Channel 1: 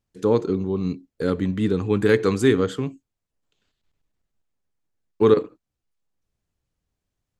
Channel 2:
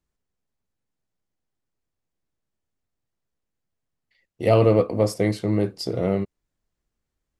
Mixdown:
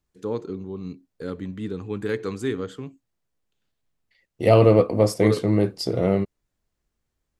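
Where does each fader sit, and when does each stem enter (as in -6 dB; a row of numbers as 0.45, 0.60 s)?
-9.0, +2.0 dB; 0.00, 0.00 s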